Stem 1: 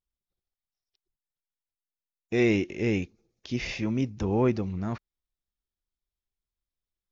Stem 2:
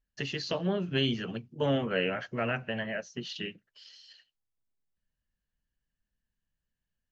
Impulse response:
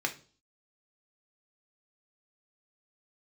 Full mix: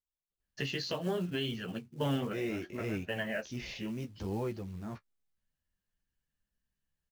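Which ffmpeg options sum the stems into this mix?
-filter_complex "[0:a]alimiter=limit=-17dB:level=0:latency=1:release=214,volume=-6.5dB,asplit=2[a][b];[1:a]adelay=400,volume=2.5dB[c];[b]apad=whole_len=331248[d];[c][d]sidechaincompress=threshold=-45dB:ratio=8:attack=6.2:release=105[e];[a][e]amix=inputs=2:normalize=0,acrusher=bits=6:mode=log:mix=0:aa=0.000001,flanger=delay=9.6:depth=6.6:regen=-27:speed=0.68:shape=triangular,alimiter=limit=-22dB:level=0:latency=1:release=406"

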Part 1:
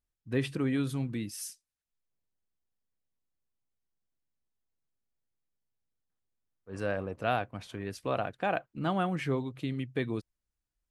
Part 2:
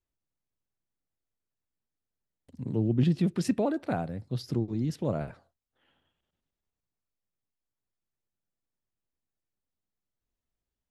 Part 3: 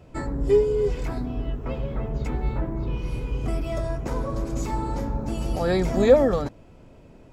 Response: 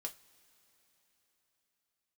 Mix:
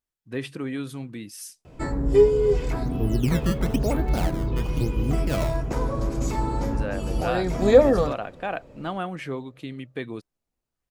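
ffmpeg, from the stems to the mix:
-filter_complex "[0:a]lowshelf=f=130:g=-10,volume=1dB,asplit=2[a][b];[1:a]deesser=0.95,acrusher=samples=16:mix=1:aa=0.000001:lfo=1:lforange=25.6:lforate=1,adelay=250,volume=-1dB,asplit=2[c][d];[d]volume=-9dB[e];[2:a]adelay=1650,volume=-0.5dB,asplit=2[f][g];[g]volume=-5dB[h];[b]apad=whole_len=395916[i];[f][i]sidechaincompress=threshold=-33dB:ratio=8:attack=33:release=532[j];[3:a]atrim=start_sample=2205[k];[e][h]amix=inputs=2:normalize=0[l];[l][k]afir=irnorm=-1:irlink=0[m];[a][c][j][m]amix=inputs=4:normalize=0"

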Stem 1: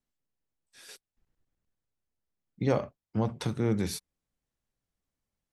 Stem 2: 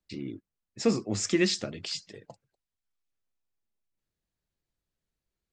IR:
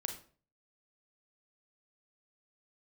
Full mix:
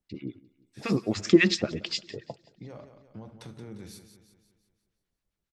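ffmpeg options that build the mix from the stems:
-filter_complex "[0:a]alimiter=limit=-21dB:level=0:latency=1:release=25,acompressor=threshold=-55dB:ratio=1.5,volume=-7dB,asplit=3[a][b][c];[b]volume=-4dB[d];[c]volume=-6dB[e];[1:a]lowpass=4.4k,dynaudnorm=f=200:g=9:m=7dB,acrossover=split=970[f][g];[f]aeval=exprs='val(0)*(1-1/2+1/2*cos(2*PI*7.4*n/s))':c=same[h];[g]aeval=exprs='val(0)*(1-1/2-1/2*cos(2*PI*7.4*n/s))':c=same[i];[h][i]amix=inputs=2:normalize=0,volume=2.5dB,asplit=3[j][k][l];[k]volume=-23dB[m];[l]volume=-22dB[n];[2:a]atrim=start_sample=2205[o];[d][m]amix=inputs=2:normalize=0[p];[p][o]afir=irnorm=-1:irlink=0[q];[e][n]amix=inputs=2:normalize=0,aecho=0:1:175|350|525|700|875|1050|1225:1|0.49|0.24|0.118|0.0576|0.0282|0.0138[r];[a][j][q][r]amix=inputs=4:normalize=0"

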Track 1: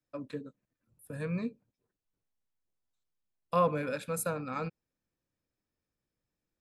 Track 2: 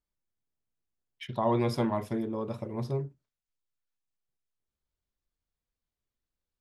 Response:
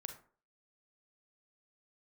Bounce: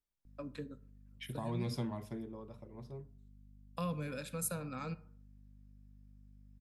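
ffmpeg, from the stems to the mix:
-filter_complex "[0:a]aeval=exprs='val(0)+0.00158*(sin(2*PI*50*n/s)+sin(2*PI*2*50*n/s)/2+sin(2*PI*3*50*n/s)/3+sin(2*PI*4*50*n/s)/4+sin(2*PI*5*50*n/s)/5)':c=same,adelay=250,volume=-3dB,asplit=2[a][b];[b]volume=-6dB[c];[1:a]volume=-6.5dB,afade=t=out:st=1.83:d=0.61:silence=0.266073,asplit=3[d][e][f];[e]volume=-8dB[g];[f]apad=whole_len=302174[h];[a][h]sidechaincompress=threshold=-37dB:ratio=8:attack=16:release=390[i];[2:a]atrim=start_sample=2205[j];[c][g]amix=inputs=2:normalize=0[k];[k][j]afir=irnorm=-1:irlink=0[l];[i][d][l]amix=inputs=3:normalize=0,acrossover=split=210|3000[m][n][o];[n]acompressor=threshold=-43dB:ratio=4[p];[m][p][o]amix=inputs=3:normalize=0"

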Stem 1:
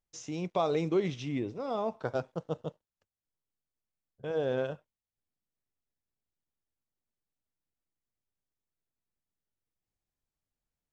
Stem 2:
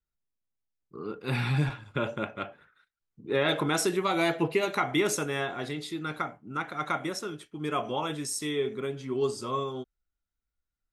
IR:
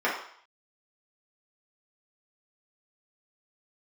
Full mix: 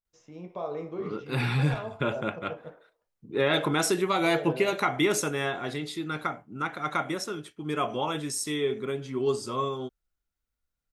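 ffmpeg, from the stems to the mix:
-filter_complex "[0:a]highshelf=f=2.2k:g=-11,volume=-9dB,asplit=2[a][b];[b]volume=-12.5dB[c];[1:a]adelay=50,volume=1.5dB[d];[2:a]atrim=start_sample=2205[e];[c][e]afir=irnorm=-1:irlink=0[f];[a][d][f]amix=inputs=3:normalize=0"

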